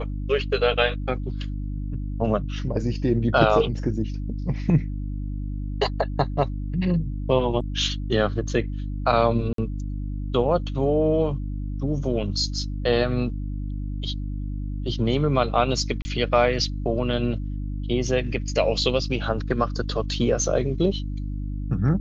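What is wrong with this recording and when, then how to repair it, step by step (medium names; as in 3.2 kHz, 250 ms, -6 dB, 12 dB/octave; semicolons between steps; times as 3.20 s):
hum 50 Hz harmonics 6 -29 dBFS
9.53–9.58 s: dropout 53 ms
16.02–16.05 s: dropout 30 ms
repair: de-hum 50 Hz, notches 6; interpolate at 9.53 s, 53 ms; interpolate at 16.02 s, 30 ms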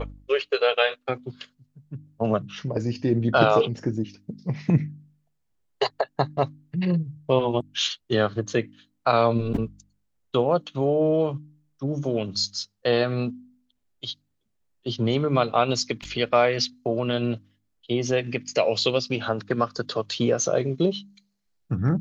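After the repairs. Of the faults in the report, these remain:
nothing left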